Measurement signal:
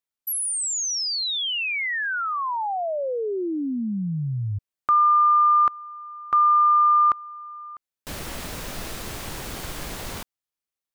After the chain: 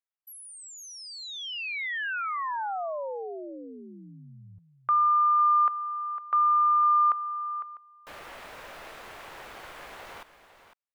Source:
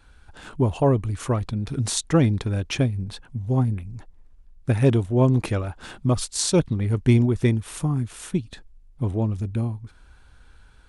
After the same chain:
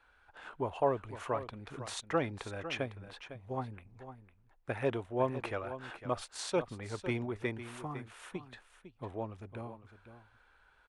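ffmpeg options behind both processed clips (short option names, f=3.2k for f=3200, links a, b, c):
-filter_complex "[0:a]acrossover=split=460 2900:gain=0.126 1 0.178[a][b][c];[a][b][c]amix=inputs=3:normalize=0,asplit=2[d][e];[e]aecho=0:1:504:0.251[f];[d][f]amix=inputs=2:normalize=0,volume=-4.5dB"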